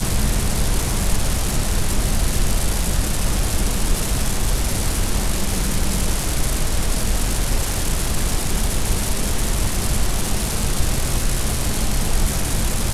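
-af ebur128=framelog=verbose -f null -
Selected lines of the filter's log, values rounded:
Integrated loudness:
  I:         -21.9 LUFS
  Threshold: -31.9 LUFS
Loudness range:
  LRA:         0.5 LU
  Threshold: -42.0 LUFS
  LRA low:   -22.2 LUFS
  LRA high:  -21.7 LUFS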